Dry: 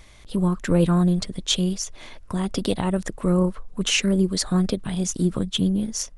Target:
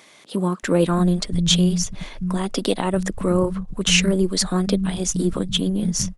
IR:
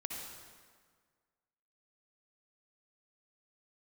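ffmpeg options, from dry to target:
-filter_complex "[0:a]acrossover=split=180[link_01][link_02];[link_01]adelay=630[link_03];[link_03][link_02]amix=inputs=2:normalize=0,volume=4dB"

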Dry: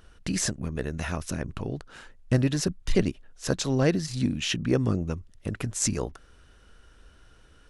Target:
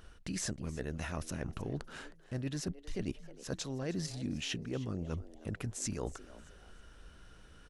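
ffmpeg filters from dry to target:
ffmpeg -i in.wav -filter_complex "[0:a]areverse,acompressor=threshold=-33dB:ratio=10,areverse,asplit=4[link_01][link_02][link_03][link_04];[link_02]adelay=313,afreqshift=150,volume=-18dB[link_05];[link_03]adelay=626,afreqshift=300,volume=-28.5dB[link_06];[link_04]adelay=939,afreqshift=450,volume=-38.9dB[link_07];[link_01][link_05][link_06][link_07]amix=inputs=4:normalize=0,volume=-1dB" out.wav

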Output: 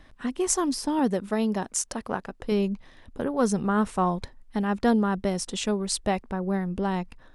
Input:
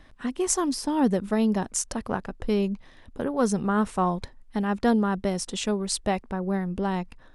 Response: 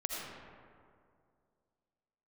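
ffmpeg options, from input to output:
-filter_complex "[0:a]asettb=1/sr,asplit=3[link_01][link_02][link_03];[link_01]atrim=end=0.994[link_04];[link_02]atrim=start=0.99:end=2.52,asetpts=PTS-STARTPTS,afade=type=in:duration=0.004:curve=qsin,afade=type=out:start_time=1.526:duration=0.004:curve=qsin,lowshelf=frequency=160:gain=-9[link_05];[link_03]atrim=start=2.516[link_06];[link_04][link_05]acrossfade=duration=0.004:curve1=hsin:curve2=qsin[link_07];[link_07][link_06]acrossfade=duration=0.004:curve1=qsin:curve2=hsin"

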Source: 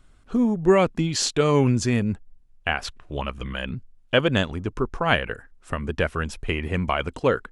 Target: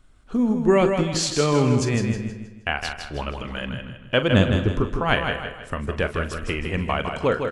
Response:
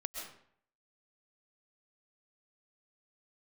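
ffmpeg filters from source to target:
-filter_complex "[0:a]asettb=1/sr,asplit=3[link_01][link_02][link_03];[link_01]atrim=end=4.324[link_04];[link_02]atrim=start=4.32:end=4.81,asetpts=PTS-STARTPTS,afade=type=in:duration=0.004:curve=qsin,afade=type=out:start_time=0.486:duration=0.004:curve=qsin,lowshelf=frequency=440:gain=8.5[link_05];[link_03]atrim=start=4.806[link_06];[link_04][link_05]acrossfade=duration=0.004:curve1=hsin:curve2=qsin[link_07];[link_07][link_06]acrossfade=duration=0.004:curve1=qsin:curve2=hsin,aecho=1:1:158|316|474|632|790:0.501|0.19|0.0724|0.0275|0.0105,asplit=2[link_08][link_09];[1:a]atrim=start_sample=2205,adelay=41[link_10];[link_09][link_10]afir=irnorm=-1:irlink=0,volume=-10dB[link_11];[link_08][link_11]amix=inputs=2:normalize=0,volume=-1dB"

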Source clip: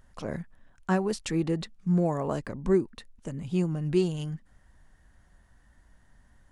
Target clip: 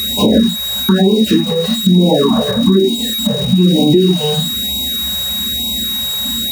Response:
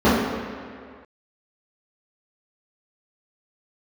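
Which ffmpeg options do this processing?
-filter_complex "[0:a]equalizer=frequency=250:width=3.1:gain=4.5,crystalizer=i=1:c=0,lowshelf=frequency=110:gain=-11[link_01];[1:a]atrim=start_sample=2205,afade=type=out:start_time=0.17:duration=0.01,atrim=end_sample=7938[link_02];[link_01][link_02]afir=irnorm=-1:irlink=0,acompressor=threshold=-5dB:ratio=12,aeval=exprs='val(0)+0.112*sin(2*PI*3800*n/s)':channel_layout=same,aeval=exprs='val(0)*gte(abs(val(0)),0.0841)':channel_layout=same,alimiter=limit=-6dB:level=0:latency=1:release=353,afftfilt=real='re*(1-between(b*sr/1024,270*pow(1500/270,0.5+0.5*sin(2*PI*1.1*pts/sr))/1.41,270*pow(1500/270,0.5+0.5*sin(2*PI*1.1*pts/sr))*1.41))':imag='im*(1-between(b*sr/1024,270*pow(1500/270,0.5+0.5*sin(2*PI*1.1*pts/sr))/1.41,270*pow(1500/270,0.5+0.5*sin(2*PI*1.1*pts/sr))*1.41))':win_size=1024:overlap=0.75,volume=4.5dB"

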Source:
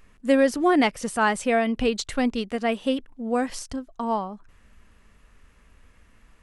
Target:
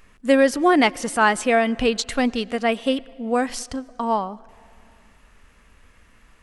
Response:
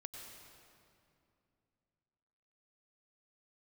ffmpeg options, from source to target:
-filter_complex "[0:a]lowshelf=frequency=440:gain=-4.5,asplit=2[link_01][link_02];[1:a]atrim=start_sample=2205,lowpass=7300[link_03];[link_02][link_03]afir=irnorm=-1:irlink=0,volume=-15dB[link_04];[link_01][link_04]amix=inputs=2:normalize=0,volume=4.5dB"

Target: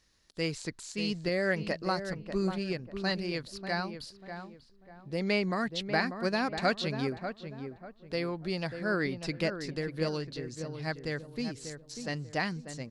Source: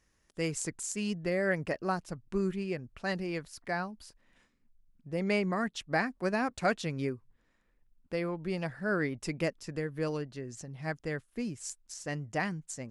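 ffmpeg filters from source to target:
ffmpeg -i in.wav -filter_complex "[0:a]acrossover=split=3800[link_01][link_02];[link_02]acompressor=threshold=-48dB:ratio=4:attack=1:release=60[link_03];[link_01][link_03]amix=inputs=2:normalize=0,equalizer=frequency=4200:width=2:gain=14,asplit=2[link_04][link_05];[link_05]adelay=592,lowpass=frequency=1500:poles=1,volume=-8dB,asplit=2[link_06][link_07];[link_07]adelay=592,lowpass=frequency=1500:poles=1,volume=0.34,asplit=2[link_08][link_09];[link_09]adelay=592,lowpass=frequency=1500:poles=1,volume=0.34,asplit=2[link_10][link_11];[link_11]adelay=592,lowpass=frequency=1500:poles=1,volume=0.34[link_12];[link_04][link_06][link_08][link_10][link_12]amix=inputs=5:normalize=0" out.wav

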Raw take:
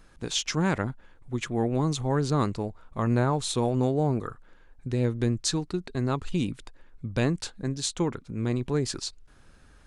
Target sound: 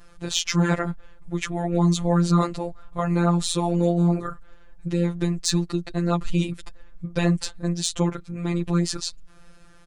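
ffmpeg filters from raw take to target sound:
ffmpeg -i in.wav -af "aecho=1:1:7.4:0.96,afftfilt=real='hypot(re,im)*cos(PI*b)':imag='0':win_size=1024:overlap=0.75,acontrast=73,volume=-1.5dB" out.wav

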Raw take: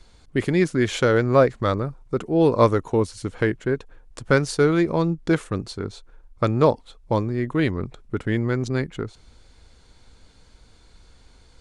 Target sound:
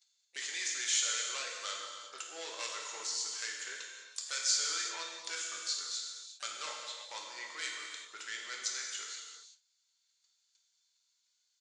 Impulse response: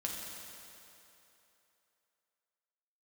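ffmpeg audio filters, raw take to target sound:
-filter_complex "[0:a]agate=range=-25dB:threshold=-43dB:ratio=16:detection=peak,highpass=740,aresample=16000,asoftclip=type=tanh:threshold=-24dB,aresample=44100,aderivative,asplit=2[link_01][link_02];[link_02]asetrate=55563,aresample=44100,atempo=0.793701,volume=-17dB[link_03];[link_01][link_03]amix=inputs=2:normalize=0,asplit=2[link_04][link_05];[link_05]acompressor=threshold=-52dB:ratio=6,volume=1dB[link_06];[link_04][link_06]amix=inputs=2:normalize=0,highshelf=frequency=3500:gain=11,asplit=2[link_07][link_08];[link_08]adelay=26,volume=-10.5dB[link_09];[link_07][link_09]amix=inputs=2:normalize=0[link_10];[1:a]atrim=start_sample=2205,afade=type=out:start_time=0.45:duration=0.01,atrim=end_sample=20286[link_11];[link_10][link_11]afir=irnorm=-1:irlink=0,volume=-1.5dB"

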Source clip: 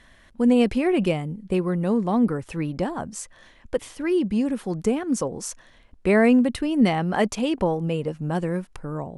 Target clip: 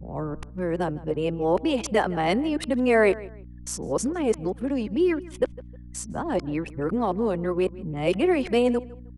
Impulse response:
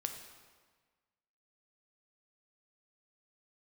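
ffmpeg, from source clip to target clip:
-filter_complex "[0:a]areverse,anlmdn=0.631,adynamicequalizer=threshold=0.02:dfrequency=330:dqfactor=1.2:tfrequency=330:tqfactor=1.2:attack=5:release=100:ratio=0.375:range=3:mode=boostabove:tftype=bell,acrossover=split=400|2200[link_01][link_02][link_03];[link_01]acompressor=threshold=-29dB:ratio=16[link_04];[link_04][link_02][link_03]amix=inputs=3:normalize=0,aeval=exprs='val(0)+0.00891*(sin(2*PI*60*n/s)+sin(2*PI*2*60*n/s)/2+sin(2*PI*3*60*n/s)/3+sin(2*PI*4*60*n/s)/4+sin(2*PI*5*60*n/s)/5)':channel_layout=same,asplit=2[link_05][link_06];[link_06]adelay=156,lowpass=frequency=2800:poles=1,volume=-19dB,asplit=2[link_07][link_08];[link_08]adelay=156,lowpass=frequency=2800:poles=1,volume=0.27[link_09];[link_07][link_09]amix=inputs=2:normalize=0[link_10];[link_05][link_10]amix=inputs=2:normalize=0"

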